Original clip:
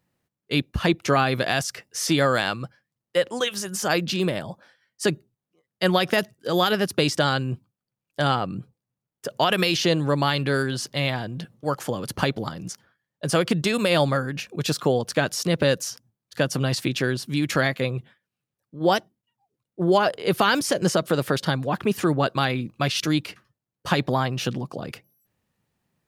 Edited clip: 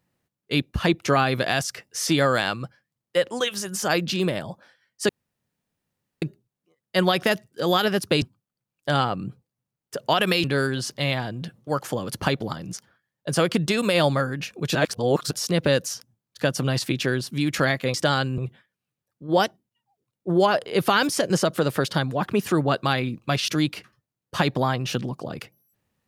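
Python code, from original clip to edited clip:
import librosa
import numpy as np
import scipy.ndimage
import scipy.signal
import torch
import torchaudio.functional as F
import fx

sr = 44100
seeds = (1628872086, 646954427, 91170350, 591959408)

y = fx.edit(x, sr, fx.insert_room_tone(at_s=5.09, length_s=1.13),
    fx.move(start_s=7.09, length_s=0.44, to_s=17.9),
    fx.cut(start_s=9.75, length_s=0.65),
    fx.reverse_span(start_s=14.71, length_s=0.56), tone=tone)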